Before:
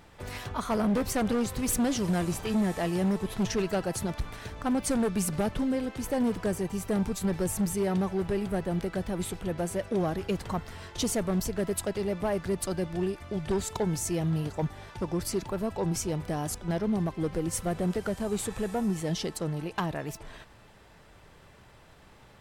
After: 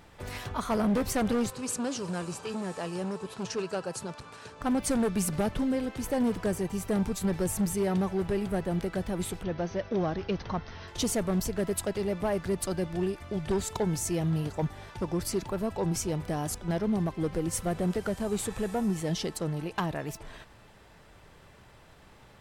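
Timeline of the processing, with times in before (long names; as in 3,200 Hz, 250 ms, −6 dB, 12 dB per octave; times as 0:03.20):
0:01.50–0:04.61: loudspeaker in its box 200–9,100 Hz, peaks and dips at 210 Hz −7 dB, 320 Hz −8 dB, 690 Hz −7 dB, 2,000 Hz −10 dB, 3,400 Hz −6 dB, 6,000 Hz −3 dB
0:09.43–0:10.88: Chebyshev low-pass filter 6,200 Hz, order 8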